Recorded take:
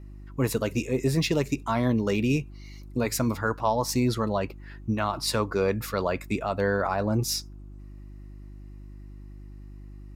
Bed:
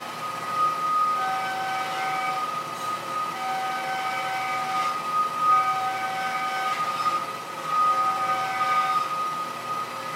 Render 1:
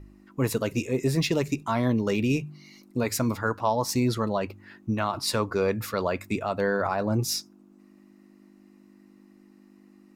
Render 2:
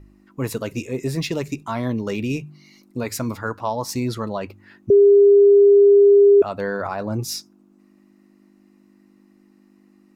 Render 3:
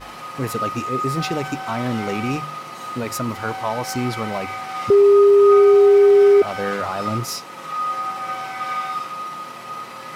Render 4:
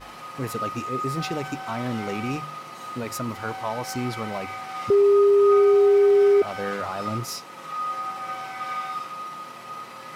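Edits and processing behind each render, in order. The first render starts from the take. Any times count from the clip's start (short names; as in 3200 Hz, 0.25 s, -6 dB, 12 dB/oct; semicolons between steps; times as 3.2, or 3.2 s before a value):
de-hum 50 Hz, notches 3
4.9–6.42 bleep 403 Hz -8 dBFS
add bed -2.5 dB
gain -5 dB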